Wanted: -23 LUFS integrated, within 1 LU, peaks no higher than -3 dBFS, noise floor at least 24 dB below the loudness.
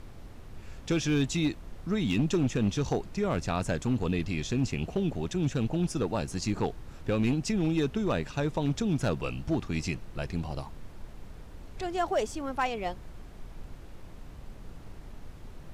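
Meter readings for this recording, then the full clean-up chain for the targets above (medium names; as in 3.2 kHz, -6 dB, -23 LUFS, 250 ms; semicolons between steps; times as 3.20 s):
clipped samples 0.8%; clipping level -20.0 dBFS; noise floor -46 dBFS; noise floor target -55 dBFS; loudness -30.5 LUFS; peak level -20.0 dBFS; loudness target -23.0 LUFS
-> clip repair -20 dBFS; noise print and reduce 9 dB; trim +7.5 dB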